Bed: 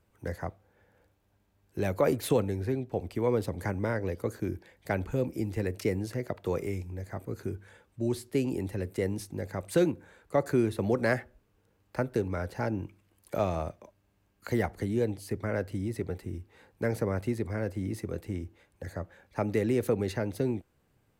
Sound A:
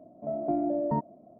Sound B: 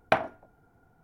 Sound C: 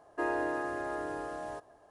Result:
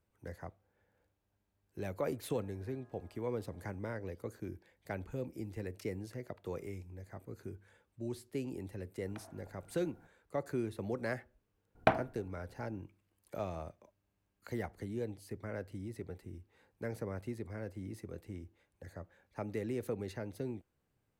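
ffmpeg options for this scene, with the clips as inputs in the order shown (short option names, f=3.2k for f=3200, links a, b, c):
-filter_complex "[2:a]asplit=2[a][b];[0:a]volume=-10.5dB[c];[3:a]acompressor=threshold=-48dB:ratio=6:attack=3.2:release=140:knee=1:detection=peak[d];[a]acompressor=threshold=-53dB:ratio=6:attack=3.2:release=140:knee=1:detection=peak[e];[b]lowshelf=f=440:g=9.5[f];[d]atrim=end=1.9,asetpts=PTS-STARTPTS,volume=-16.5dB,afade=t=in:d=0.004:c=hsin,afade=t=out:st=1.896:d=0.004:c=hsin,adelay=2160[g];[e]atrim=end=1.03,asetpts=PTS-STARTPTS,volume=-0.5dB,afade=t=in:d=0.004:c=hsin,afade=t=out:st=1.026:d=0.004:c=hsin,adelay=9040[h];[f]atrim=end=1.03,asetpts=PTS-STARTPTS,volume=-6.5dB,afade=t=in:d=0.004:c=hsin,afade=t=out:st=1.026:d=0.004:c=hsin,adelay=11750[i];[c][g][h][i]amix=inputs=4:normalize=0"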